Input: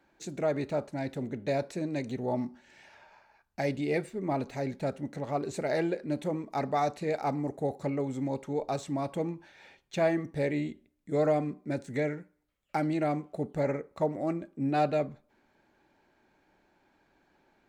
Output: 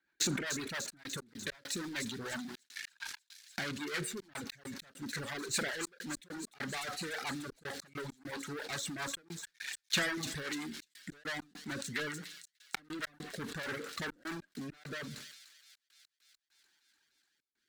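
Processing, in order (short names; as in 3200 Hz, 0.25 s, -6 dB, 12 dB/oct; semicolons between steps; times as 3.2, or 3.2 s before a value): de-hum 92.13 Hz, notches 15; sample leveller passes 5; rotary speaker horn 7.5 Hz, later 0.75 Hz, at 13.59; Schroeder reverb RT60 0.45 s, combs from 31 ms, DRR 16.5 dB; reverb removal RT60 1.4 s; compressor 6:1, threshold -33 dBFS, peak gain reduction 14.5 dB; fifteen-band EQ 630 Hz -9 dB, 1600 Hz +10 dB, 4000 Hz +5 dB; on a send: thin delay 0.296 s, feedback 70%, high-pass 4900 Hz, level -5.5 dB; on the sum: step gate "xxxxxx.x.x." 100 bpm -60 dB; tilt +2 dB/oct; sustainer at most 46 dB/s; gain -4 dB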